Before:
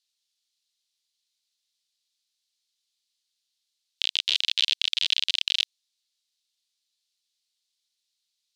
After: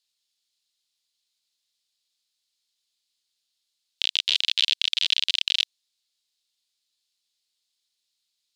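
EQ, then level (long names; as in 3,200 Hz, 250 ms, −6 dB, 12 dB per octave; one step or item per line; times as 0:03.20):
notch filter 5,900 Hz, Q 19
+1.5 dB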